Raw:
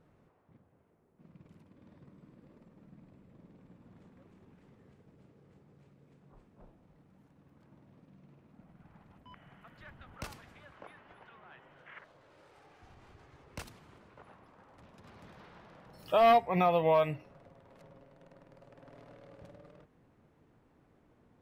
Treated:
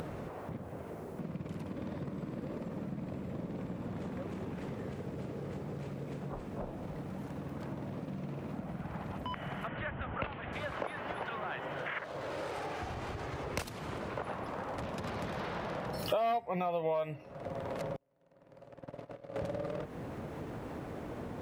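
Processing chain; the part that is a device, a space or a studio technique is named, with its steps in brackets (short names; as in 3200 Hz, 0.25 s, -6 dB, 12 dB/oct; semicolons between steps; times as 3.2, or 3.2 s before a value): 17.96–19.36 gate -50 dBFS, range -42 dB; upward and downward compression (upward compressor, threshold -49 dBFS; compressor 8:1, threshold -50 dBFS, peak gain reduction 27 dB); 9.67–10.53 steep low-pass 3200 Hz 48 dB/oct; HPF 41 Hz; bell 580 Hz +4 dB 0.93 oct; gain +15.5 dB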